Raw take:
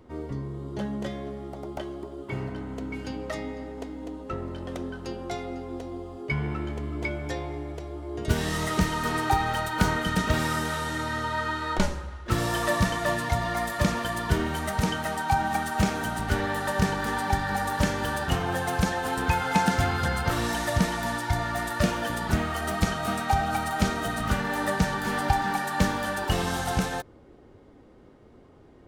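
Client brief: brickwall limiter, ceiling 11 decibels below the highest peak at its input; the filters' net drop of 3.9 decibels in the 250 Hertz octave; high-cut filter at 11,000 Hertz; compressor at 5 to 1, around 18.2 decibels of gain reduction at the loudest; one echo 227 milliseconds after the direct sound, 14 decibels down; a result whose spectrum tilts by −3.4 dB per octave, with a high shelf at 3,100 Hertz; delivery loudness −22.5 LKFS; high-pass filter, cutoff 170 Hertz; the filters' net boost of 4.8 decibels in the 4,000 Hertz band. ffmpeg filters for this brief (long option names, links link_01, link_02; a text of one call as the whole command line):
ffmpeg -i in.wav -af "highpass=170,lowpass=11000,equalizer=frequency=250:width_type=o:gain=-3.5,highshelf=frequency=3100:gain=3.5,equalizer=frequency=4000:width_type=o:gain=3.5,acompressor=threshold=-42dB:ratio=5,alimiter=level_in=11dB:limit=-24dB:level=0:latency=1,volume=-11dB,aecho=1:1:227:0.2,volume=21.5dB" out.wav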